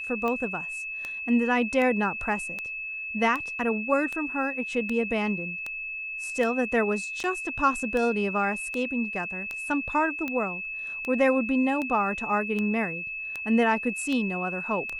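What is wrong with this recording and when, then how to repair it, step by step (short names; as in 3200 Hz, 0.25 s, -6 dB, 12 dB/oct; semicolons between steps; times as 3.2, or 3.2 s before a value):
tick 78 rpm -18 dBFS
tone 2600 Hz -32 dBFS
7.23–7.24 gap 9.6 ms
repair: de-click; notch 2600 Hz, Q 30; interpolate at 7.23, 9.6 ms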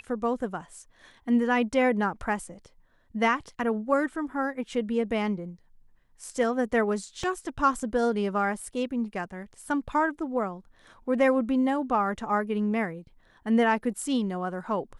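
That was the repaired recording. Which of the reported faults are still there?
none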